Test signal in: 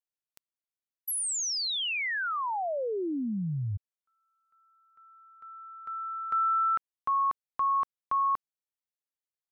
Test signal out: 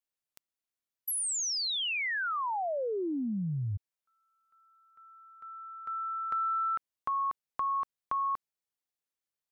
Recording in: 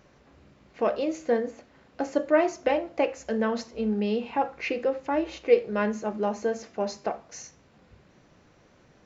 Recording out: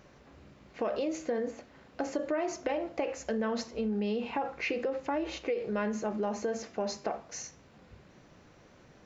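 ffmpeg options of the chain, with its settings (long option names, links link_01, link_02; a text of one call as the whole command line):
ffmpeg -i in.wav -af "acompressor=threshold=-31dB:ratio=10:attack=20:release=40:knee=6:detection=rms,volume=1dB" out.wav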